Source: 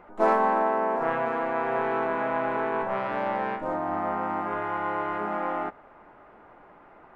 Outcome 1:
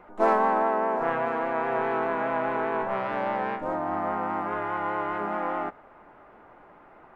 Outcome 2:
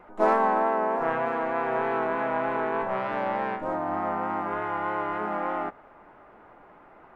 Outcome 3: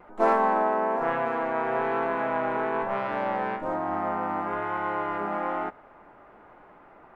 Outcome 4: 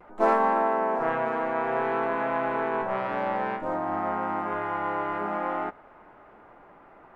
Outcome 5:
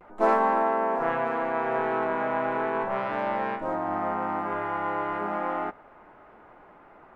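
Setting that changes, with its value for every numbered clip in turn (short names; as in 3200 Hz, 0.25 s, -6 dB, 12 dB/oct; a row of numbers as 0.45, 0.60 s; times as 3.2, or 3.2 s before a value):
vibrato, rate: 4.9, 3.3, 1.1, 0.55, 0.36 Hz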